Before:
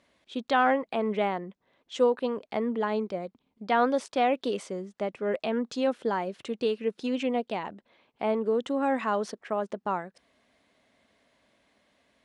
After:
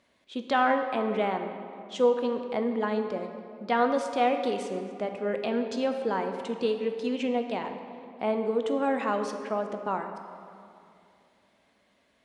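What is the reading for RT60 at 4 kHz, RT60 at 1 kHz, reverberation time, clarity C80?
1.6 s, 2.4 s, 2.6 s, 8.0 dB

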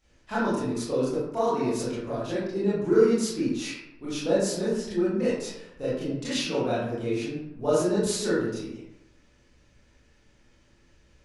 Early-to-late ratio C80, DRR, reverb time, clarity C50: 3.0 dB, -10.0 dB, 0.85 s, -1.0 dB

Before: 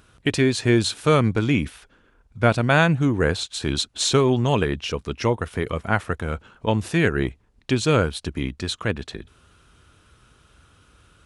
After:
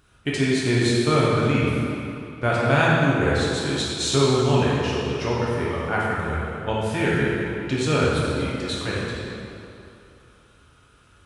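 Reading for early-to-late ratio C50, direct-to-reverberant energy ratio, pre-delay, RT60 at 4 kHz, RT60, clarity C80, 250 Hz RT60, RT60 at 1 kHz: -3.0 dB, -7.0 dB, 3 ms, 2.1 s, 2.8 s, -1.0 dB, 2.5 s, 2.9 s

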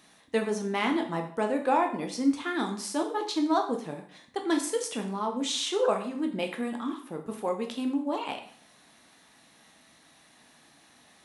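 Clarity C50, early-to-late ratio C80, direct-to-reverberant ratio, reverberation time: 9.0 dB, 12.5 dB, 3.0 dB, 0.50 s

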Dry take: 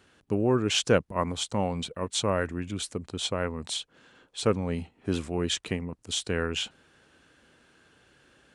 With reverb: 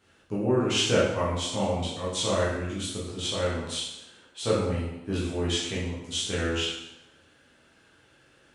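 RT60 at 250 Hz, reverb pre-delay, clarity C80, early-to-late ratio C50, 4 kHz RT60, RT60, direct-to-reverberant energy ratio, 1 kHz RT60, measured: 0.85 s, 6 ms, 4.0 dB, 1.0 dB, 0.80 s, 0.85 s, -8.5 dB, 0.85 s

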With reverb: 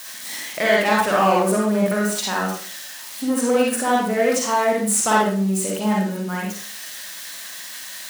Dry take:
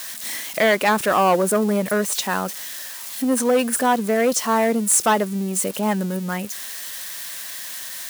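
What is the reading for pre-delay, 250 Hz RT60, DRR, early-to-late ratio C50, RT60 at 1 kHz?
39 ms, 0.45 s, -3.5 dB, 0.0 dB, 0.45 s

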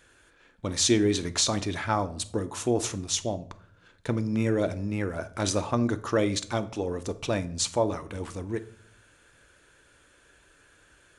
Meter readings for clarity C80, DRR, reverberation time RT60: 21.5 dB, 11.0 dB, not exponential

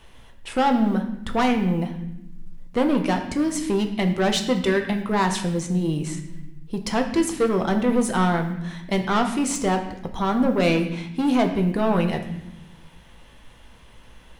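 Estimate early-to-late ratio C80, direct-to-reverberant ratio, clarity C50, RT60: 10.5 dB, 4.0 dB, 8.5 dB, 0.85 s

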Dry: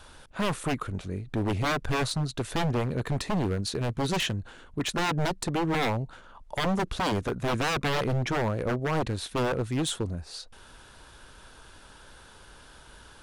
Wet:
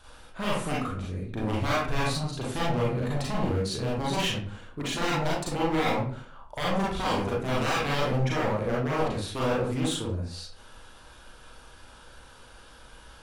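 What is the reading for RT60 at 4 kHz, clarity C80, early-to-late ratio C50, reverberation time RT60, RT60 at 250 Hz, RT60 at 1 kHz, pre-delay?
0.30 s, 7.5 dB, 0.5 dB, 0.50 s, 0.45 s, 0.45 s, 35 ms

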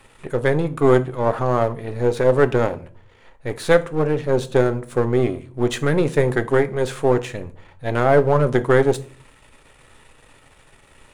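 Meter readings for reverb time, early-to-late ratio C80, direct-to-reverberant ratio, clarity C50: 0.45 s, 24.0 dB, 10.5 dB, 18.0 dB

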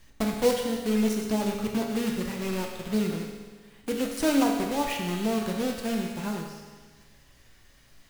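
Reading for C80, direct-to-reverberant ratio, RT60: 5.0 dB, 0.5 dB, 1.5 s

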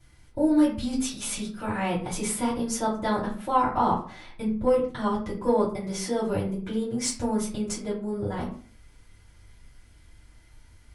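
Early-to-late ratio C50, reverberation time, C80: 7.5 dB, 0.45 s, 12.0 dB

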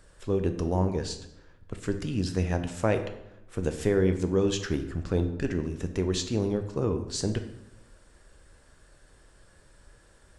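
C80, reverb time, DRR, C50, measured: 12.5 dB, 0.85 s, 7.0 dB, 10.5 dB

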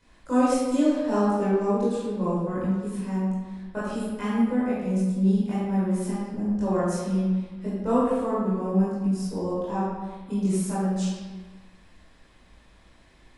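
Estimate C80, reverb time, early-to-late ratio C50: 0.5 dB, 1.3 s, -2.0 dB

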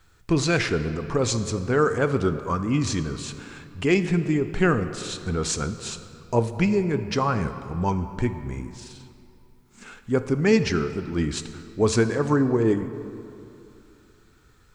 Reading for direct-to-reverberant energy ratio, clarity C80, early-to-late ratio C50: 10.0 dB, 11.5 dB, 11.0 dB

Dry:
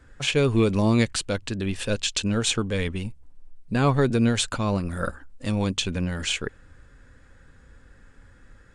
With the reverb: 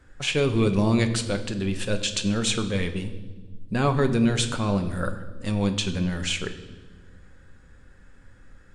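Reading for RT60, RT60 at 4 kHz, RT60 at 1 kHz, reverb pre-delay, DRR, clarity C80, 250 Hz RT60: 1.4 s, 1.2 s, 1.1 s, 5 ms, 7.5 dB, 13.5 dB, 2.4 s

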